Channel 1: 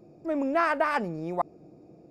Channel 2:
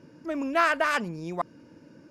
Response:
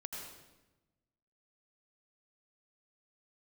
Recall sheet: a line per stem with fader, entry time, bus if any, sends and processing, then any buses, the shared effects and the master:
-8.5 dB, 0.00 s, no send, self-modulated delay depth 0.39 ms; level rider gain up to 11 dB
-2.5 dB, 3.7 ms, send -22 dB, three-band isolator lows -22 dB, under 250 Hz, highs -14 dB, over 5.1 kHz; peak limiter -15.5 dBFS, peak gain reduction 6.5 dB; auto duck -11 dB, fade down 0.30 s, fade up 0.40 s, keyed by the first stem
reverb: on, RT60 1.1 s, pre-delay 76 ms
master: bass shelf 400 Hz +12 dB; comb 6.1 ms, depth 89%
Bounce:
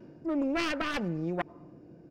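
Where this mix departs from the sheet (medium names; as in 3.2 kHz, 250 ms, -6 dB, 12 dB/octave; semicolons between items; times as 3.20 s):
stem 1: missing level rider gain up to 11 dB; master: missing comb 6.1 ms, depth 89%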